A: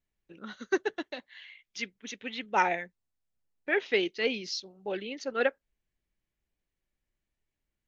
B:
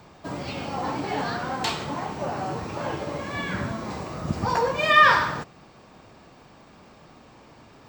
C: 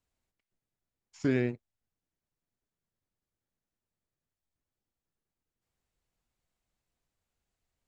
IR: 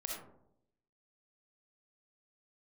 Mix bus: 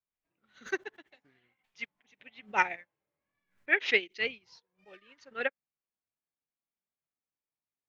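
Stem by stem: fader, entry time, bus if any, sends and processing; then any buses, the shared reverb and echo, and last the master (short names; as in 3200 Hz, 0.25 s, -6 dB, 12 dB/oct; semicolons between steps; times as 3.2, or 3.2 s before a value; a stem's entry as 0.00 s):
-2.5 dB, 0.00 s, no send, backwards sustainer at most 86 dB/s
-13.5 dB, 0.00 s, muted 3.68–4.2, no send, compressor 3:1, threshold -33 dBFS, peak gain reduction 16.5 dB; chorus 0.52 Hz, delay 19.5 ms, depth 7.8 ms; running maximum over 5 samples
-9.0 dB, 0.00 s, no send, tremolo 1.8 Hz, depth 62%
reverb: off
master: bell 2200 Hz +9.5 dB 1.2 oct; upward expander 2.5:1, over -45 dBFS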